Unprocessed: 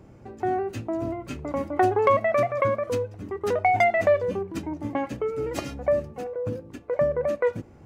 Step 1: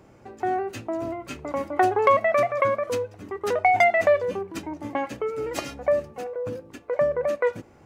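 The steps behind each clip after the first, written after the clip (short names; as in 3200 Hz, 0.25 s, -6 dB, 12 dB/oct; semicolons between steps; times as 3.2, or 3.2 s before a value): low shelf 330 Hz -11 dB; gain +3.5 dB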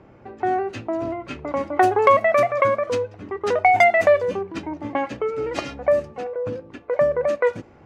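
low-pass opened by the level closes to 2800 Hz, open at -16 dBFS; gain +3.5 dB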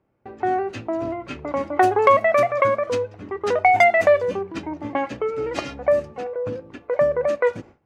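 gate with hold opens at -38 dBFS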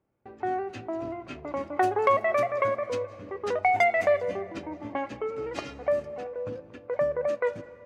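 reverb RT60 2.3 s, pre-delay 0.154 s, DRR 17 dB; gain -7.5 dB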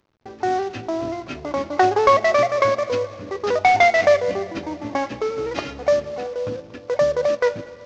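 CVSD 32 kbps; gain +8 dB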